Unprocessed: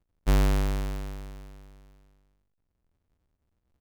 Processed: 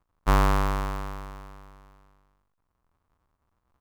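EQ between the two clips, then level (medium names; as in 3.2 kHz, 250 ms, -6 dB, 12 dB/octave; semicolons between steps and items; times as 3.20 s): peaking EQ 1.1 kHz +14.5 dB 1.1 oct; 0.0 dB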